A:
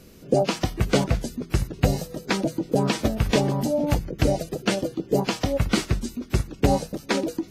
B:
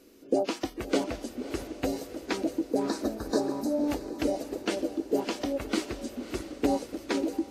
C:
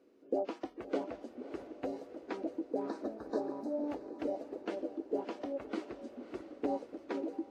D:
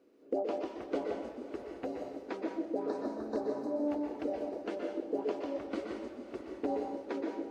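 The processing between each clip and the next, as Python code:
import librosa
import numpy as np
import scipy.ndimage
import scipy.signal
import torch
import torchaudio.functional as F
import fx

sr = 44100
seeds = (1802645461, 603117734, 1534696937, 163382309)

y1 = fx.low_shelf_res(x, sr, hz=210.0, db=-10.0, q=3.0)
y1 = fx.spec_erase(y1, sr, start_s=2.65, length_s=1.18, low_hz=1800.0, high_hz=3700.0)
y1 = fx.echo_diffused(y1, sr, ms=595, feedback_pct=54, wet_db=-12.0)
y1 = y1 * 10.0 ** (-8.0 / 20.0)
y2 = fx.bandpass_q(y1, sr, hz=600.0, q=0.62)
y2 = y2 * 10.0 ** (-6.5 / 20.0)
y3 = np.clip(y2, -10.0 ** (-23.0 / 20.0), 10.0 ** (-23.0 / 20.0))
y3 = fx.rev_plate(y3, sr, seeds[0], rt60_s=0.77, hf_ratio=0.95, predelay_ms=110, drr_db=2.0)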